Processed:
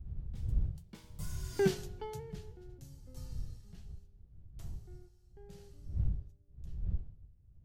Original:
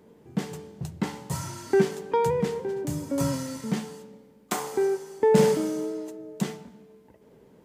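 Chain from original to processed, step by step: Doppler pass-by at 1.65 s, 29 m/s, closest 3.6 m; wind noise 89 Hz -41 dBFS; ten-band graphic EQ 250 Hz -12 dB, 500 Hz -7 dB, 1 kHz -11 dB, 2 kHz -7 dB, 8 kHz -5 dB; trim +2 dB

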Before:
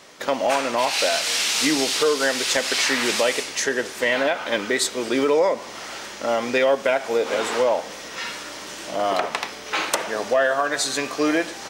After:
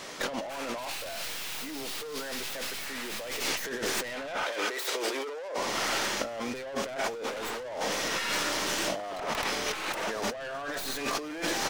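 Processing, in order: tracing distortion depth 0.42 ms; saturation -22 dBFS, distortion -9 dB; 4.43–5.58 s: high-pass 380 Hz 24 dB/octave; compressor with a negative ratio -34 dBFS, ratio -1

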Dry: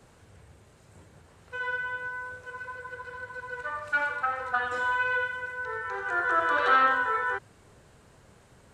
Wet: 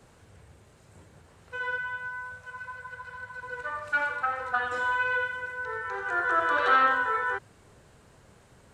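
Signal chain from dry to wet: 1.78–3.43 s: Chebyshev band-stop 210–620 Hz, order 2

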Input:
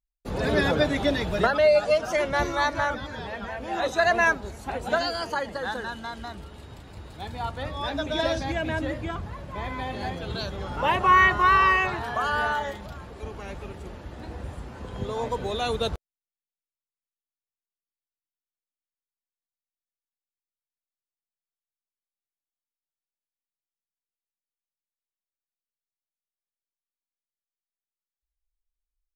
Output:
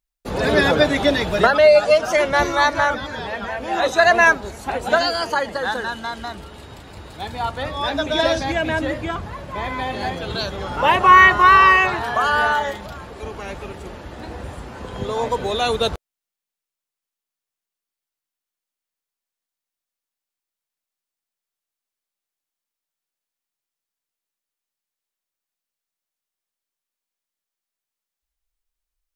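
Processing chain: bass shelf 230 Hz -6.5 dB; trim +8 dB

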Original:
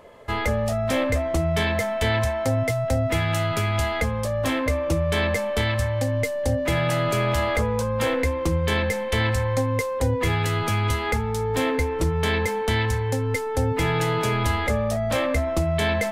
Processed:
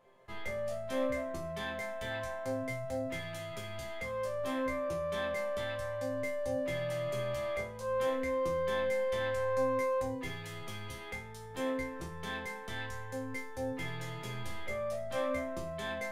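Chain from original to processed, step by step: band-stop 7.9 kHz, Q 23; chord resonator C3 sus4, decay 0.38 s

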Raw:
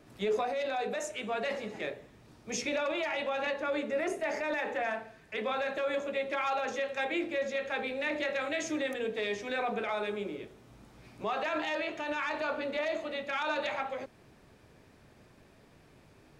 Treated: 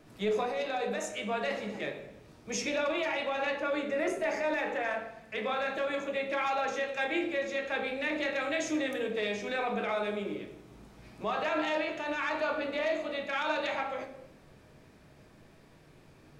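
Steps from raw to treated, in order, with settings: simulated room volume 270 m³, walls mixed, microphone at 0.62 m

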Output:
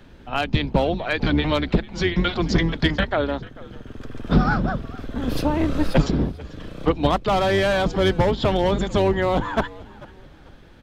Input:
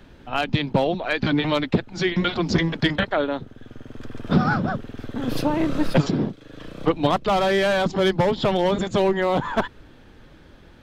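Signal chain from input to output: octave divider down 2 oct, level -2 dB; on a send: frequency-shifting echo 442 ms, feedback 31%, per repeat -86 Hz, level -20 dB

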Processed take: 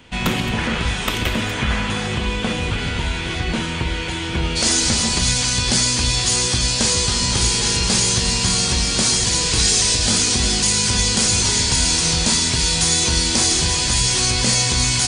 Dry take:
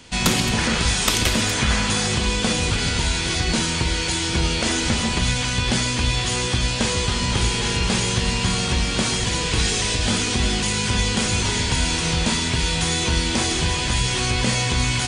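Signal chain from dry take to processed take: high-order bell 6.9 kHz -10 dB, from 4.55 s +9 dB

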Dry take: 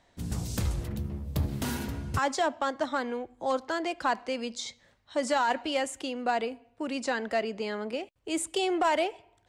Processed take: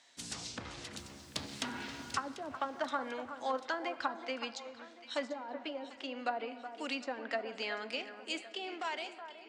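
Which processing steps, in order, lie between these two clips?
fade out at the end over 1.81 s; frequency weighting ITU-R 468; low-pass that closes with the level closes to 380 Hz, closed at -22.5 dBFS; 0.97–2.13 s: small samples zeroed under -56 dBFS; peaking EQ 260 Hz +7 dB 0.39 oct; echo whose repeats swap between lows and highs 371 ms, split 1.8 kHz, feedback 66%, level -10.5 dB; on a send at -15 dB: reverberation RT60 2.6 s, pre-delay 6 ms; on the sum: trim -3 dB

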